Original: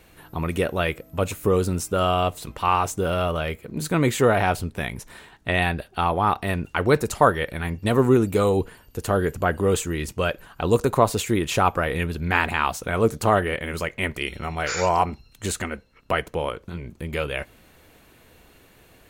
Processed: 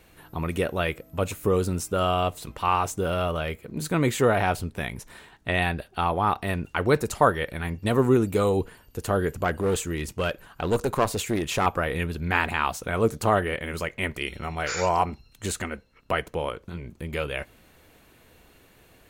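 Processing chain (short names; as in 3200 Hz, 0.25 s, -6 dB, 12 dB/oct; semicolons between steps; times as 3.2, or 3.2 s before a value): 9.44–11.66 one-sided clip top -20 dBFS; gain -2.5 dB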